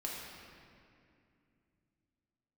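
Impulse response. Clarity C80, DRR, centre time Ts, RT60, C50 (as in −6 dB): 1.0 dB, −4.0 dB, 118 ms, 2.5 s, −0.5 dB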